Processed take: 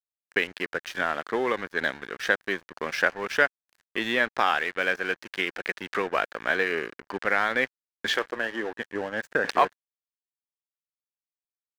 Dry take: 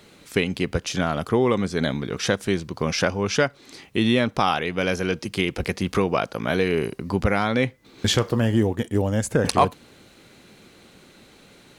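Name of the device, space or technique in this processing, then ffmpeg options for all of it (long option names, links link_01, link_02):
pocket radio on a weak battery: -filter_complex "[0:a]asettb=1/sr,asplit=3[link_01][link_02][link_03];[link_01]atrim=end=8.134[link_04];[link_02]atrim=start=8.13:end=8.79,asetpts=PTS-STARTPTS,afade=type=in:duration=0.004:curve=qsin,afade=type=out:start_time=0.656:duration=0.004:curve=qsin,highpass=280[link_05];[link_03]atrim=start=8.786[link_06];[link_04][link_05]acrossfade=duration=0.004:curve1=hsin:curve2=qsin[link_07];[link_07][link_06]acrossfade=duration=0.004:curve1=qsin:curve2=hsin,highpass=380,lowpass=4200,aeval=exprs='sgn(val(0))*max(abs(val(0))-0.0141,0)':channel_layout=same,equalizer=frequency=1700:width_type=o:width=0.53:gain=12,volume=-3dB"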